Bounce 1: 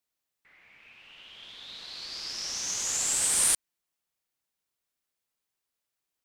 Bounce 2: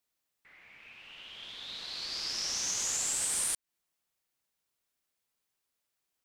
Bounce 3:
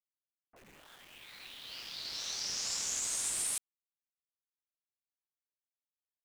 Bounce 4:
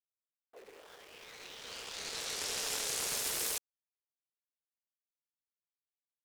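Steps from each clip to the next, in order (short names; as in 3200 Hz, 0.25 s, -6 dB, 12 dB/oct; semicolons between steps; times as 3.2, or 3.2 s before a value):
compressor 5:1, threshold -31 dBFS, peak gain reduction 10 dB; gain +1.5 dB
level-crossing sampler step -48.5 dBFS; bands offset in time lows, highs 30 ms, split 1100 Hz; ring modulator with a swept carrier 570 Hz, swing 70%, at 2.2 Hz
resonant high-pass 440 Hz, resonance Q 4.9; requantised 12-bit, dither none; noise-modulated delay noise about 1800 Hz, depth 0.033 ms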